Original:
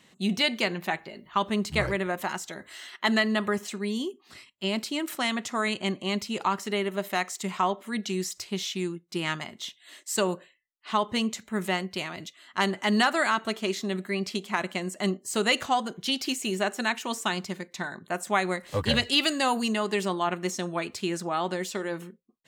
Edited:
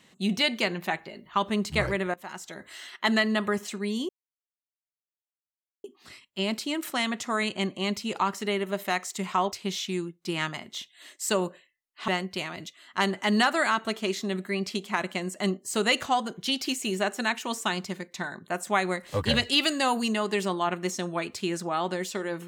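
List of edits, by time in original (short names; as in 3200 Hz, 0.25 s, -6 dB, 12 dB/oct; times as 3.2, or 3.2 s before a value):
2.14–2.66 fade in, from -18.5 dB
4.09 insert silence 1.75 s
7.77–8.39 cut
10.95–11.68 cut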